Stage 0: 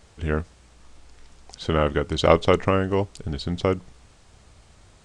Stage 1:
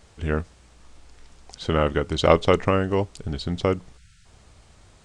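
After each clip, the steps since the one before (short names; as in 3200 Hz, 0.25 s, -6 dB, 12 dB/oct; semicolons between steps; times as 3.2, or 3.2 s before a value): spectral delete 3.98–4.26, 210–1300 Hz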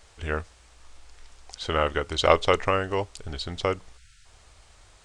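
bell 180 Hz -13.5 dB 2.2 oct; gain +1.5 dB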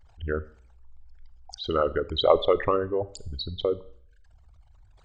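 formant sharpening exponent 3; Schroeder reverb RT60 0.57 s, combs from 30 ms, DRR 16.5 dB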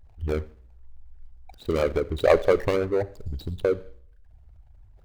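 median filter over 41 samples; gain +4 dB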